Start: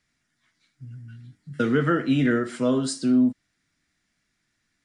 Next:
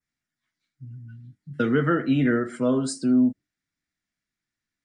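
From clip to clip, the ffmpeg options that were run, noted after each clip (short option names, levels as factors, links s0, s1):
-af "adynamicequalizer=threshold=0.00355:dfrequency=3600:dqfactor=1.2:tfrequency=3600:tqfactor=1.2:attack=5:release=100:ratio=0.375:range=2.5:mode=cutabove:tftype=bell,afftdn=nr=13:nf=-46"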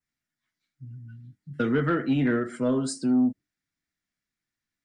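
-af "asoftclip=type=tanh:threshold=0.237,volume=0.841"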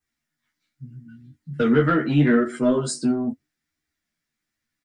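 -filter_complex "[0:a]flanger=delay=2.5:depth=7.5:regen=-35:speed=0.78:shape=sinusoidal,asplit=2[s0][s1];[s1]adelay=13,volume=0.708[s2];[s0][s2]amix=inputs=2:normalize=0,volume=2.37"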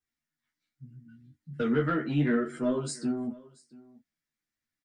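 -af "aecho=1:1:681:0.075,volume=0.376"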